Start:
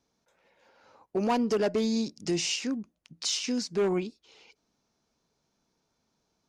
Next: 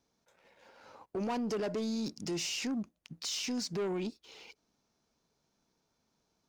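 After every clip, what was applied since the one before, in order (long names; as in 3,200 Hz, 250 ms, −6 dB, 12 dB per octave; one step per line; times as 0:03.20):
brickwall limiter −29.5 dBFS, peak gain reduction 11 dB
leveller curve on the samples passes 1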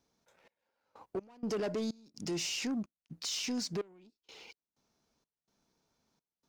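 gate pattern "xx..x.xx.xxx.x" 63 BPM −24 dB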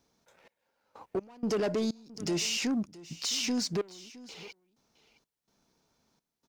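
single-tap delay 665 ms −19 dB
level +5 dB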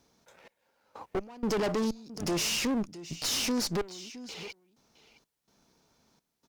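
asymmetric clip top −42.5 dBFS
level +5 dB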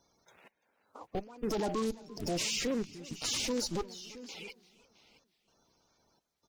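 spectral magnitudes quantised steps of 30 dB
feedback echo with a swinging delay time 343 ms, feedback 47%, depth 109 cents, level −22 dB
level −3 dB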